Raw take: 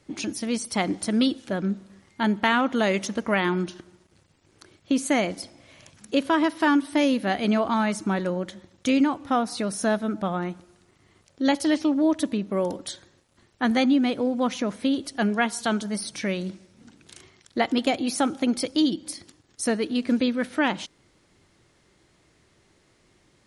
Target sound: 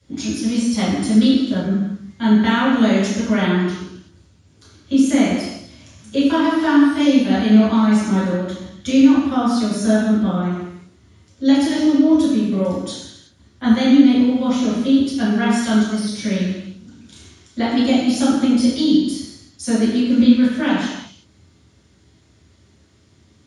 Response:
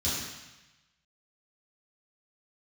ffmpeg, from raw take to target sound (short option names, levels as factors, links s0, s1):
-filter_complex "[0:a]flanger=delay=6.5:depth=4.6:regen=-85:speed=1.3:shape=triangular[s0];[1:a]atrim=start_sample=2205,afade=t=out:st=0.44:d=0.01,atrim=end_sample=19845[s1];[s0][s1]afir=irnorm=-1:irlink=0,volume=0.891"